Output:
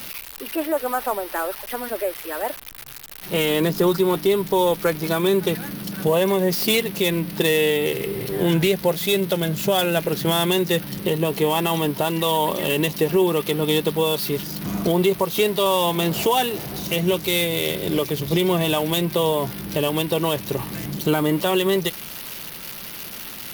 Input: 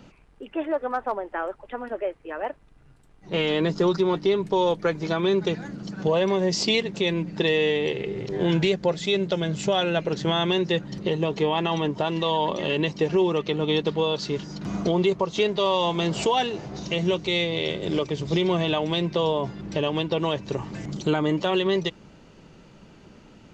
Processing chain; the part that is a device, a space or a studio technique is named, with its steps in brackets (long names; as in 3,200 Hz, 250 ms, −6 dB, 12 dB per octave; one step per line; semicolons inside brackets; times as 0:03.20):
budget class-D amplifier (gap after every zero crossing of 0.072 ms; spike at every zero crossing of −20 dBFS)
level +3 dB